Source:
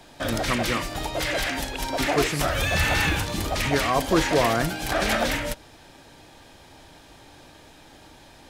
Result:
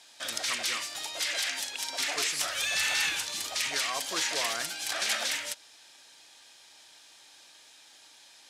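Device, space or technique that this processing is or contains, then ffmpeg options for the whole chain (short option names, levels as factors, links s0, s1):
piezo pickup straight into a mixer: -af "lowpass=7300,aderivative,volume=1.88"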